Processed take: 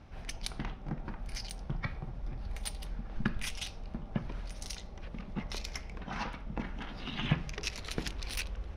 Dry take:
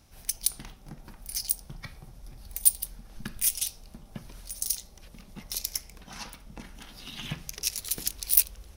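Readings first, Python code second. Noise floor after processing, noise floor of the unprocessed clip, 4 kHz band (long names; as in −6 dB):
−46 dBFS, −52 dBFS, −5.0 dB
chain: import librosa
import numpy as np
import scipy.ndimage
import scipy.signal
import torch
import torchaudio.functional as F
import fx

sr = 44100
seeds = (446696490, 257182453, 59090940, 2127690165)

y = scipy.signal.sosfilt(scipy.signal.butter(2, 2200.0, 'lowpass', fs=sr, output='sos'), x)
y = F.gain(torch.from_numpy(y), 7.0).numpy()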